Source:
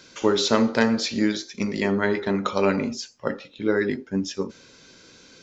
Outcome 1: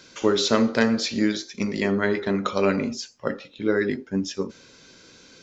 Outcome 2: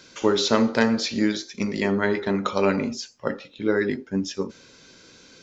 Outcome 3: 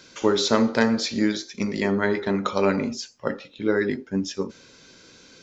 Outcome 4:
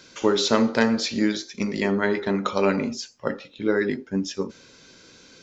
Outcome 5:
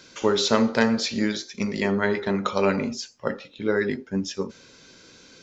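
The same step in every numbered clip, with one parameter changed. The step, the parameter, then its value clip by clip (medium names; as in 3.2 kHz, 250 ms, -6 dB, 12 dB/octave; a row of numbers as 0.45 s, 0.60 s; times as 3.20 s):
dynamic bell, frequency: 880 Hz, 7.8 kHz, 2.8 kHz, 100 Hz, 310 Hz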